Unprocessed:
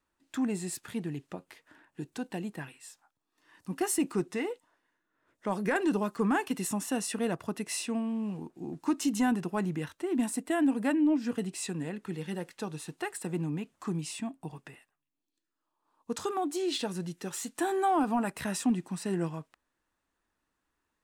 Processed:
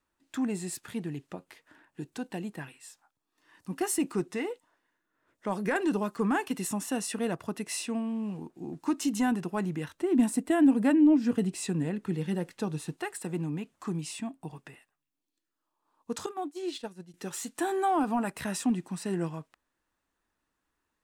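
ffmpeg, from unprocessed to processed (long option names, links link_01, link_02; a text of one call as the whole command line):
ffmpeg -i in.wav -filter_complex "[0:a]asettb=1/sr,asplit=3[link_01][link_02][link_03];[link_01]atrim=end=9.944[link_04];[link_02]atrim=start=9.94:end=12.97,asetpts=PTS-STARTPTS,afade=type=in:duration=0.004:curve=qsin,afade=type=out:start_time=3.026:duration=0.004:curve=qsin,lowshelf=frequency=420:gain=7.5[link_05];[link_03]atrim=start=12.966[link_06];[link_04][link_05]acrossfade=duration=0.004:curve1=hsin:curve2=qsin[link_07];[link_07][link_06]acrossfade=duration=0.004:curve1=qsin:curve2=hsin,asettb=1/sr,asplit=3[link_08][link_09][link_10];[link_08]atrim=end=16.264[link_11];[link_09]atrim=start=16.26:end=17.14,asetpts=PTS-STARTPTS,afade=type=in:duration=0.004:curve=qsin,afade=type=out:start_time=0.876:duration=0.004:curve=qsin,agate=range=-33dB:threshold=-27dB:ratio=3:release=100:detection=peak[link_12];[link_10]atrim=start=17.136[link_13];[link_11][link_12]acrossfade=duration=0.004:curve1=hsin:curve2=qsin[link_14];[link_14][link_13]acrossfade=duration=0.004:curve1=qsin:curve2=hsin" out.wav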